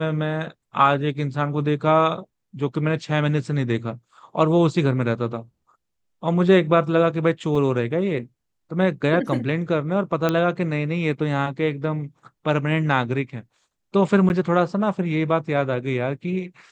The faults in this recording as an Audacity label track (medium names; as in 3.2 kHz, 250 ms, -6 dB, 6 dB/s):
7.550000	7.550000	dropout 3.6 ms
10.290000	10.290000	pop -8 dBFS
14.290000	14.300000	dropout 9.9 ms